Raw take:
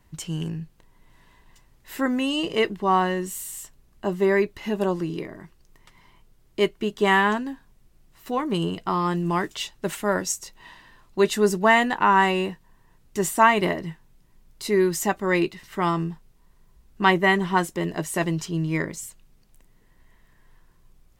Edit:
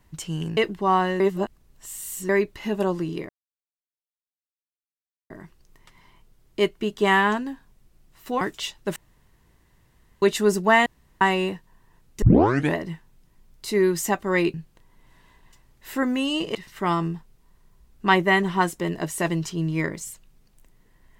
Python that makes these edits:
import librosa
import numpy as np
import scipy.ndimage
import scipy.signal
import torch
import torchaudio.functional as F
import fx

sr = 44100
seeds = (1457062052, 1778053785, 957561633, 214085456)

y = fx.edit(x, sr, fx.move(start_s=0.57, length_s=2.01, to_s=15.51),
    fx.reverse_span(start_s=3.21, length_s=1.09),
    fx.insert_silence(at_s=5.3, length_s=2.01),
    fx.cut(start_s=8.41, length_s=0.97),
    fx.room_tone_fill(start_s=9.93, length_s=1.26),
    fx.room_tone_fill(start_s=11.83, length_s=0.35),
    fx.tape_start(start_s=13.19, length_s=0.53), tone=tone)